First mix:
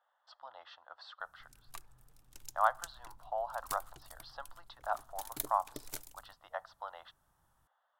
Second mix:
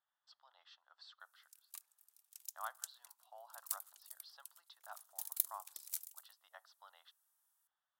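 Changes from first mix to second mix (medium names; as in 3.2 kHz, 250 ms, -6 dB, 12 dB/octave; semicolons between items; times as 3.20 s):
background: add high-pass 580 Hz 12 dB/octave; master: add differentiator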